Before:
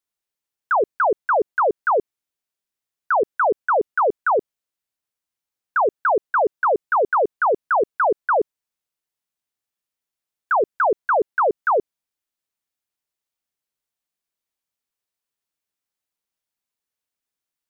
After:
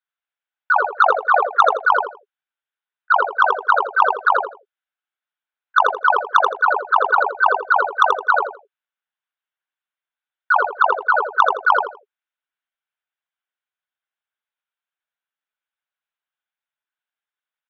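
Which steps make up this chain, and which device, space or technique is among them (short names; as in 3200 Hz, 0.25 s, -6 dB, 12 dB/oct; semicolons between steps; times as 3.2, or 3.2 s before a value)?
0.96–1.81 comb 1.6 ms, depth 94%; talking toy (LPC vocoder at 8 kHz pitch kept; HPF 650 Hz 12 dB/oct; bell 1500 Hz +8 dB 0.4 oct; soft clip -0.5 dBFS, distortion -16 dB); feedback echo 83 ms, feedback 22%, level -5 dB; gain -1 dB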